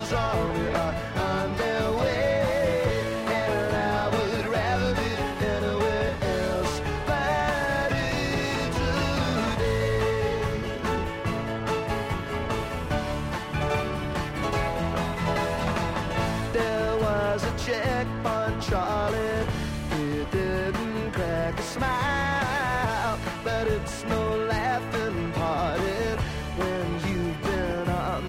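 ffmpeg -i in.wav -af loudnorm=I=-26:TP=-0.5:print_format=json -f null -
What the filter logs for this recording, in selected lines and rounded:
"input_i" : "-26.9",
"input_tp" : "-12.3",
"input_lra" : "2.3",
"input_thresh" : "-36.9",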